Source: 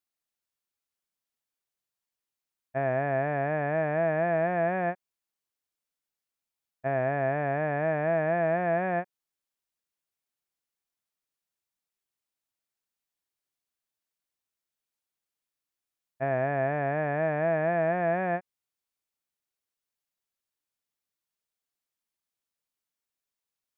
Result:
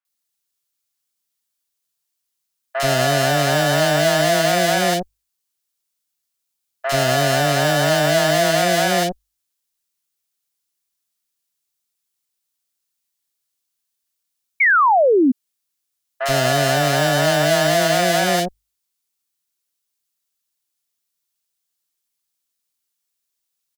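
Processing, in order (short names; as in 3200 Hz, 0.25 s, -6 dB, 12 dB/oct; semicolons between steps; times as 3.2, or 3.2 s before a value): in parallel at -8 dB: fuzz box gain 40 dB, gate -50 dBFS; on the sum: high shelf 2300 Hz +10.5 dB; notches 50/100 Hz; three bands offset in time mids, highs, lows 50/80 ms, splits 660/2100 Hz; painted sound fall, 14.6–15.32, 240–2300 Hz -16 dBFS; gain +2.5 dB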